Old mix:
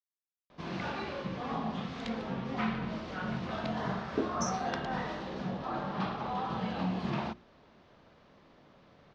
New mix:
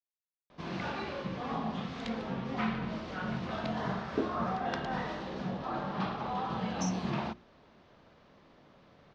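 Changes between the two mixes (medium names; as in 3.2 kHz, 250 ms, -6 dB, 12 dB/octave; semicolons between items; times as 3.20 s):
speech: entry +2.40 s; reverb: off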